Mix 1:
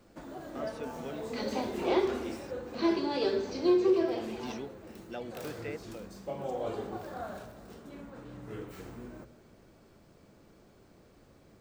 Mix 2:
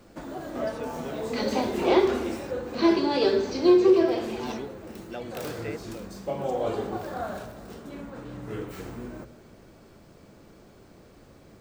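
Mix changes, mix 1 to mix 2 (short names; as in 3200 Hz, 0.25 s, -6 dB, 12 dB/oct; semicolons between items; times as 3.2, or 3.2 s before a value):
speech +3.0 dB; background +7.0 dB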